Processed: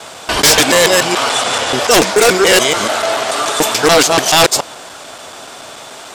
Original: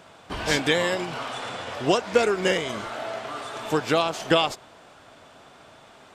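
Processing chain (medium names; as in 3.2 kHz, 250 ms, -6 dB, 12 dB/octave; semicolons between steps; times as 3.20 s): time reversed locally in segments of 144 ms; tone controls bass -8 dB, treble +11 dB; sine folder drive 14 dB, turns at -3 dBFS; trim -1 dB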